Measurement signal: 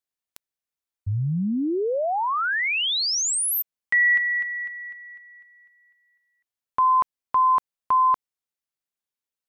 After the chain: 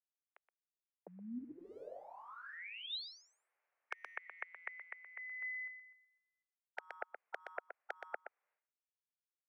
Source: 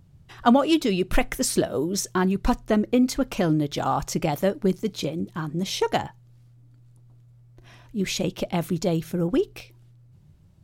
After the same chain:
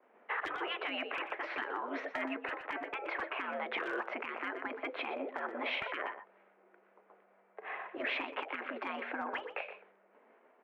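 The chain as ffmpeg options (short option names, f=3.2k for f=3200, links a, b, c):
-filter_complex "[0:a]agate=range=-33dB:threshold=-50dB:ratio=3:release=408:detection=peak,highpass=f=400:t=q:w=0.5412,highpass=f=400:t=q:w=1.307,lowpass=f=2.2k:t=q:w=0.5176,lowpass=f=2.2k:t=q:w=0.7071,lowpass=f=2.2k:t=q:w=1.932,afreqshift=76,acompressor=threshold=-31dB:ratio=1.5:attack=0.12:release=650:knee=6:detection=peak,afftfilt=real='re*lt(hypot(re,im),0.0355)':imag='im*lt(hypot(re,im),0.0355)':win_size=1024:overlap=0.75,asplit=2[a][b];[b]aecho=0:1:122:0.224[c];[a][c]amix=inputs=2:normalize=0,alimiter=level_in=14.5dB:limit=-24dB:level=0:latency=1:release=166,volume=-14.5dB,volume=13dB"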